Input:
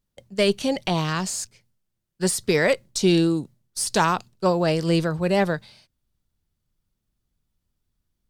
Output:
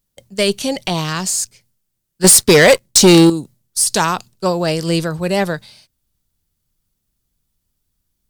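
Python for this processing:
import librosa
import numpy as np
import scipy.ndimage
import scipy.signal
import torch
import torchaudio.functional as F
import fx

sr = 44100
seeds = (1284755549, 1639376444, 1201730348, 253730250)

y = fx.high_shelf(x, sr, hz=5100.0, db=11.0)
y = fx.leveller(y, sr, passes=3, at=(2.24, 3.3))
y = y * 10.0 ** (3.0 / 20.0)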